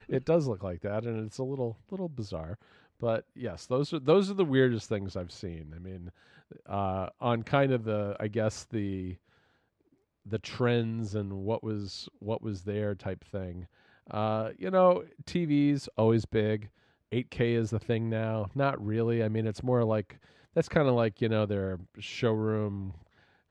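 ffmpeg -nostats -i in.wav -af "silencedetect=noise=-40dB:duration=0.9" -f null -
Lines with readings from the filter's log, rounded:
silence_start: 9.14
silence_end: 10.26 | silence_duration: 1.12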